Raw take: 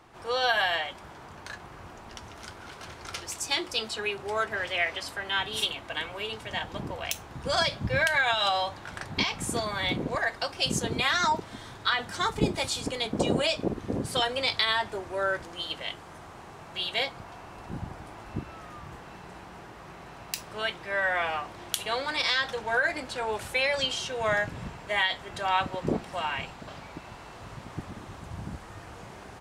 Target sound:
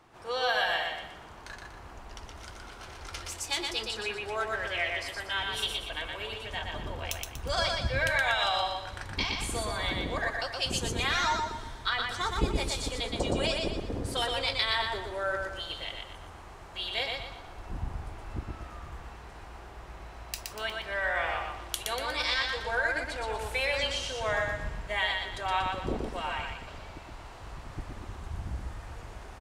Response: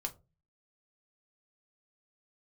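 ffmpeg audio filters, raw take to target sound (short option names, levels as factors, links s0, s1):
-filter_complex "[0:a]asubboost=boost=9:cutoff=51,asplit=2[s0][s1];[s1]aecho=0:1:120|240|360|480|600:0.668|0.261|0.102|0.0396|0.0155[s2];[s0][s2]amix=inputs=2:normalize=0,volume=0.631"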